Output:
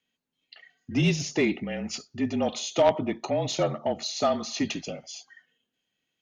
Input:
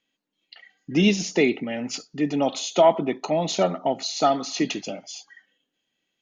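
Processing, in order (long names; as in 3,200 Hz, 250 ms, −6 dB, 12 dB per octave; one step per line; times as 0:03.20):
frequency shifter −37 Hz
harmonic generator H 3 −11 dB, 5 −19 dB, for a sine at −5 dBFS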